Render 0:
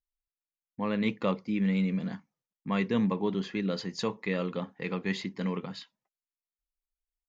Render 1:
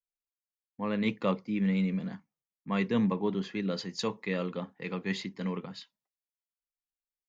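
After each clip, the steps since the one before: three bands expanded up and down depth 40%; trim -1 dB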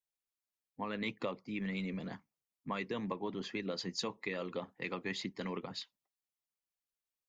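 harmonic-percussive split harmonic -12 dB; peaking EQ 1.5 kHz -3 dB 0.25 oct; compression 6:1, threshold -38 dBFS, peak gain reduction 12.5 dB; trim +3.5 dB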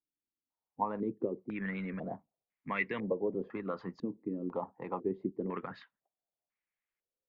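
step-sequenced low-pass 2 Hz 290–2100 Hz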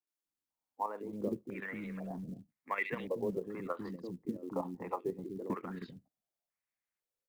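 three bands offset in time mids, highs, lows 70/250 ms, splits 330/2800 Hz; short-mantissa float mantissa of 4-bit; level held to a coarse grid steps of 9 dB; trim +3.5 dB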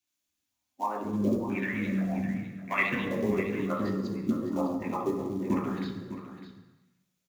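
delay 605 ms -12 dB; reverberation RT60 1.0 s, pre-delay 3 ms, DRR 1.5 dB; trim +5.5 dB

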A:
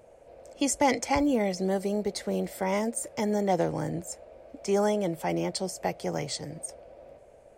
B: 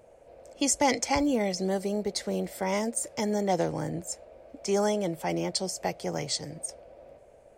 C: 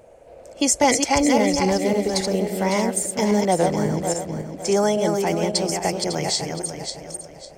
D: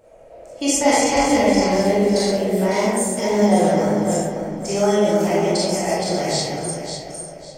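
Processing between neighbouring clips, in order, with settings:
dynamic bell 5.5 kHz, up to +6 dB, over -47 dBFS, Q 0.83; trim -1 dB
backward echo that repeats 276 ms, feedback 52%, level -4.5 dB; trim +6.5 dB
algorithmic reverb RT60 1.2 s, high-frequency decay 0.45×, pre-delay 0 ms, DRR -8.5 dB; trim -6.5 dB

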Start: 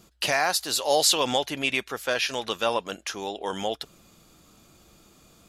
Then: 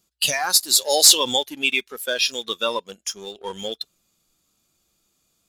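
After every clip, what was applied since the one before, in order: spectral noise reduction 14 dB; treble shelf 2.8 kHz +12 dB; waveshaping leveller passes 1; trim -3 dB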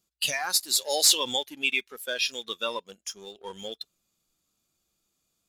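dynamic bell 2.2 kHz, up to +4 dB, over -33 dBFS, Q 1.3; trim -8 dB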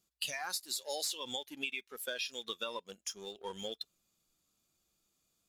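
compression 8:1, threshold -33 dBFS, peak gain reduction 17 dB; trim -2 dB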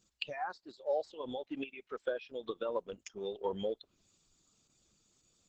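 resonances exaggerated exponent 1.5; low-pass that closes with the level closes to 860 Hz, closed at -37.5 dBFS; trim +8 dB; Opus 10 kbps 48 kHz

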